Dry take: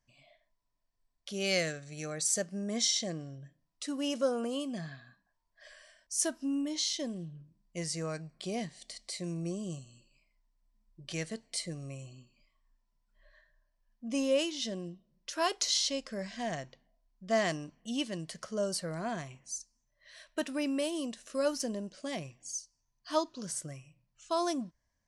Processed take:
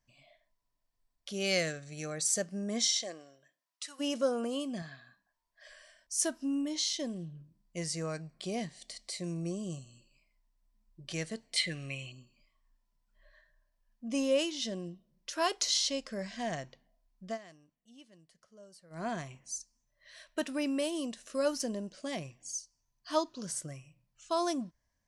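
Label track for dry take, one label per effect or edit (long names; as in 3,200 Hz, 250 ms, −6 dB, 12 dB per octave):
2.880000	3.990000	high-pass filter 390 Hz → 1,200 Hz
4.820000	5.690000	low-shelf EQ 330 Hz −7.5 dB
11.560000	12.120000	flat-topped bell 2,400 Hz +15.5 dB
17.250000	19.030000	duck −22 dB, fades 0.13 s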